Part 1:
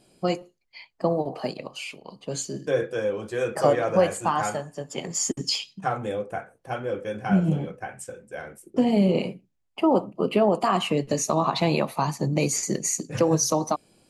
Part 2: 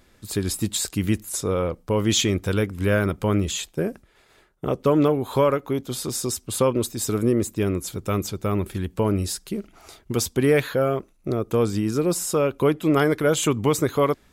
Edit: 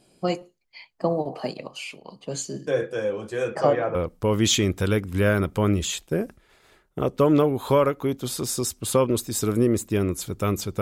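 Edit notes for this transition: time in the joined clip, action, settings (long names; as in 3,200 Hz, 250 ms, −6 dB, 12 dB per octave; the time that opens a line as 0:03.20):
part 1
0:03.49–0:03.95: low-pass filter 7,200 Hz → 1,700 Hz
0:03.95: continue with part 2 from 0:01.61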